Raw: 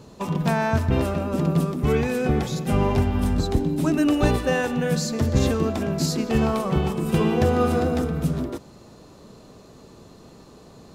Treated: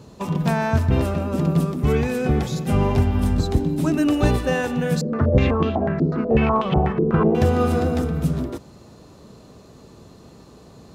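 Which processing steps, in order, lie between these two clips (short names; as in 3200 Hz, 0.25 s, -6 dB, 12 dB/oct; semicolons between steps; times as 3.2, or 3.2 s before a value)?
HPF 57 Hz; low shelf 94 Hz +8.5 dB; 5.01–7.35 stepped low-pass 8.1 Hz 430–3200 Hz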